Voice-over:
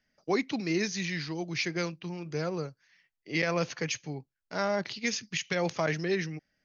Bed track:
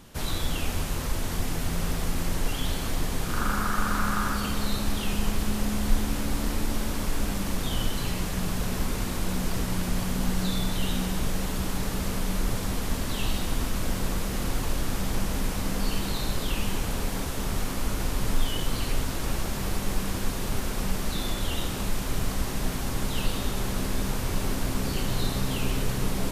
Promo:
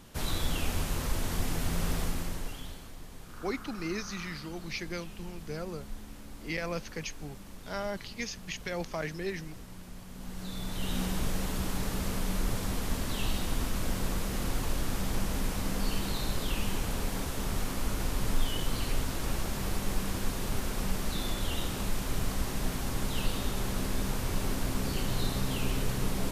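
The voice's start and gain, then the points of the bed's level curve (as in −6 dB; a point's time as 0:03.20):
3.15 s, −6.0 dB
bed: 0:02.00 −2.5 dB
0:02.93 −18.5 dB
0:10.07 −18.5 dB
0:11.01 −3.5 dB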